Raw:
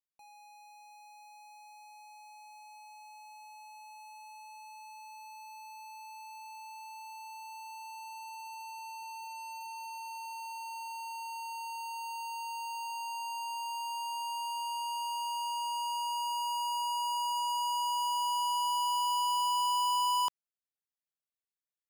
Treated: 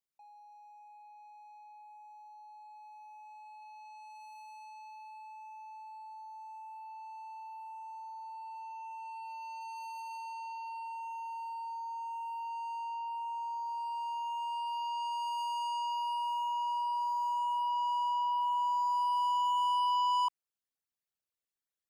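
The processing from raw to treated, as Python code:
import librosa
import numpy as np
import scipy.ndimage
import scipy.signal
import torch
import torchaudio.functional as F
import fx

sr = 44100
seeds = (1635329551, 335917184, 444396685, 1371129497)

y = fx.envelope_sharpen(x, sr, power=2.0)
y = fx.quant_float(y, sr, bits=6)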